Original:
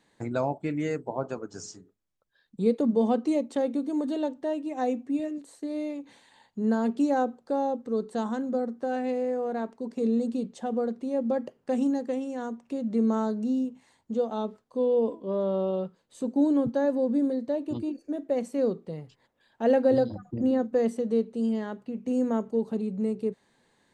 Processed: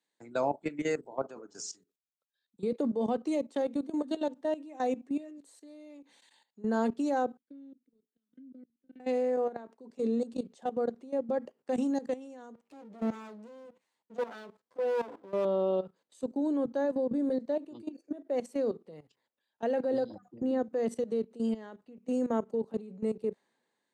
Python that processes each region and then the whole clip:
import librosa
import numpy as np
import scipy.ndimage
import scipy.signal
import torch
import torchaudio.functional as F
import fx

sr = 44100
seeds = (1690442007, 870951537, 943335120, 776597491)

y = fx.chain(x, sr, fx.vowel_filter(vowel='i'),
    fx.low_shelf(hz=220.0, db=-3.0),
    fx.level_steps(step_db=19), at=(7.37, 9.0))
y = fx.chain(y, sr, fx.lower_of_two(delay_ms=9.9),
    fx.high_shelf(hz=4100.0, db=-3.5),
    fx.clip_hard(threshold_db=-23.0), at=(12.54, 15.45))
y = scipy.signal.sosfilt(scipy.signal.butter(2, 250.0, 'highpass', fs=sr, output='sos'), y)
y = fx.level_steps(y, sr, step_db=15)
y = fx.band_widen(y, sr, depth_pct=40)
y = y * 10.0 ** (1.5 / 20.0)